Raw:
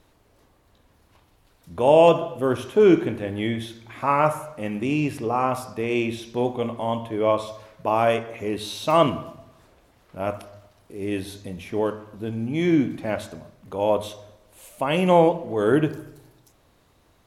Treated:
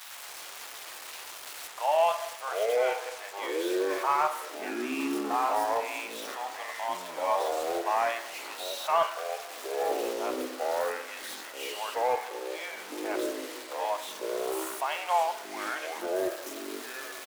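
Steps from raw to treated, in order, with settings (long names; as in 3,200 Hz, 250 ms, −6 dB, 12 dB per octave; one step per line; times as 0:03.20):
spike at every zero crossing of −19.5 dBFS
Butterworth high-pass 670 Hz 48 dB per octave
mid-hump overdrive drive 8 dB, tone 1,400 Hz, clips at −6 dBFS
delay with pitch and tempo change per echo 101 ms, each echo −5 semitones, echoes 3
on a send: single-tap delay 914 ms −23 dB
on the sum: level −5 dB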